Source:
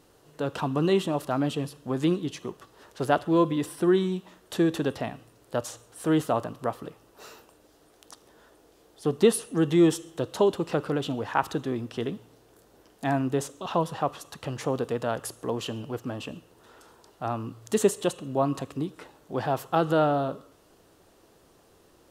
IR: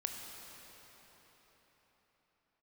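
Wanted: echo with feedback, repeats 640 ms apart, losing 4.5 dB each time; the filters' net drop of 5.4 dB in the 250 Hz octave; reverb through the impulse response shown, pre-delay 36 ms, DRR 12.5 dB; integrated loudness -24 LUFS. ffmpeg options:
-filter_complex "[0:a]equalizer=f=250:t=o:g=-8.5,aecho=1:1:640|1280|1920|2560|3200|3840|4480|5120|5760:0.596|0.357|0.214|0.129|0.0772|0.0463|0.0278|0.0167|0.01,asplit=2[s0][s1];[1:a]atrim=start_sample=2205,adelay=36[s2];[s1][s2]afir=irnorm=-1:irlink=0,volume=0.224[s3];[s0][s3]amix=inputs=2:normalize=0,volume=1.88"

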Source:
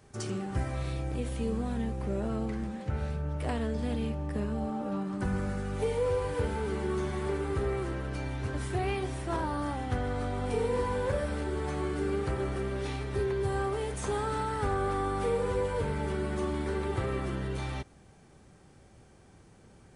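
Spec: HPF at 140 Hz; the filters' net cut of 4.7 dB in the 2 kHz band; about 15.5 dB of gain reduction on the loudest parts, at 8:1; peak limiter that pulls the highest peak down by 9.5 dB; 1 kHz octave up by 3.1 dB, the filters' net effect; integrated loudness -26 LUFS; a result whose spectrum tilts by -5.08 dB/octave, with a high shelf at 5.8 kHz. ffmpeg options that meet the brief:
-af "highpass=140,equalizer=f=1000:t=o:g=6,equalizer=f=2000:t=o:g=-8.5,highshelf=f=5800:g=-7.5,acompressor=threshold=0.00794:ratio=8,volume=11.2,alimiter=limit=0.133:level=0:latency=1"

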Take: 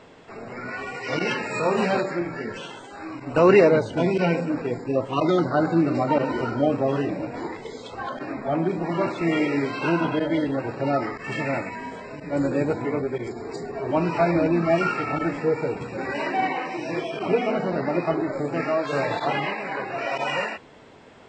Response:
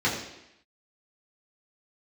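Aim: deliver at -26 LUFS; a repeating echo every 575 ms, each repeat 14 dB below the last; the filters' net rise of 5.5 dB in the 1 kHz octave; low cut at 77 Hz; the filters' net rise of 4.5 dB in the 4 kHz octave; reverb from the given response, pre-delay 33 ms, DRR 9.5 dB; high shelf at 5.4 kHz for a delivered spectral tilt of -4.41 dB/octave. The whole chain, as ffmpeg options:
-filter_complex "[0:a]highpass=77,equalizer=f=1000:t=o:g=7,equalizer=f=4000:t=o:g=4.5,highshelf=f=5400:g=3.5,aecho=1:1:575|1150:0.2|0.0399,asplit=2[s0][s1];[1:a]atrim=start_sample=2205,adelay=33[s2];[s1][s2]afir=irnorm=-1:irlink=0,volume=0.0708[s3];[s0][s3]amix=inputs=2:normalize=0,volume=0.596"

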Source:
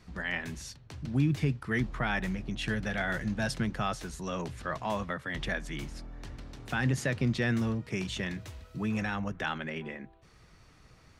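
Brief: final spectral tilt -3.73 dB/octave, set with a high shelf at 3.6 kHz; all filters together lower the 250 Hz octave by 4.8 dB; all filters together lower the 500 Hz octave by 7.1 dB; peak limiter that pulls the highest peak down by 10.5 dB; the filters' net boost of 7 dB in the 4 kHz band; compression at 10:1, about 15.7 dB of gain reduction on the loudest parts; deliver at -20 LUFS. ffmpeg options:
-af "equalizer=f=250:t=o:g=-4.5,equalizer=f=500:t=o:g=-8.5,highshelf=f=3600:g=8,equalizer=f=4000:t=o:g=4,acompressor=threshold=0.00794:ratio=10,volume=26.6,alimiter=limit=0.335:level=0:latency=1"

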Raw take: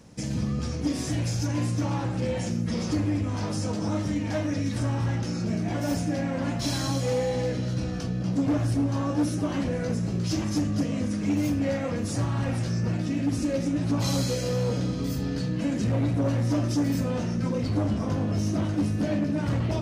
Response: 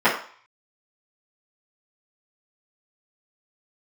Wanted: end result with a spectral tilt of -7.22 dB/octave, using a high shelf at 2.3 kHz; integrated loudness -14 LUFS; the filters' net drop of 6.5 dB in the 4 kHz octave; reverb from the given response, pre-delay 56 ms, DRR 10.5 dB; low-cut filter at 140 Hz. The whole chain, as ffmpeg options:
-filter_complex "[0:a]highpass=140,highshelf=f=2300:g=-4,equalizer=f=4000:t=o:g=-4.5,asplit=2[s0][s1];[1:a]atrim=start_sample=2205,adelay=56[s2];[s1][s2]afir=irnorm=-1:irlink=0,volume=0.0251[s3];[s0][s3]amix=inputs=2:normalize=0,volume=5.62"

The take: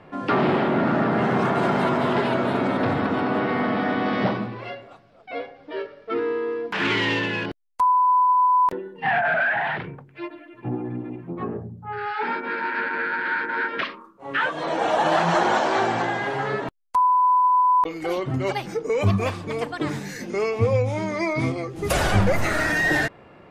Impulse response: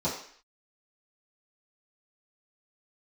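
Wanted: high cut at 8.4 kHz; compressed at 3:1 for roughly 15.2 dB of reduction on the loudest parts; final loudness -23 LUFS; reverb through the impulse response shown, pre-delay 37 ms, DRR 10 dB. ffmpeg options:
-filter_complex "[0:a]lowpass=8400,acompressor=threshold=0.0158:ratio=3,asplit=2[s0][s1];[1:a]atrim=start_sample=2205,adelay=37[s2];[s1][s2]afir=irnorm=-1:irlink=0,volume=0.112[s3];[s0][s3]amix=inputs=2:normalize=0,volume=3.76"

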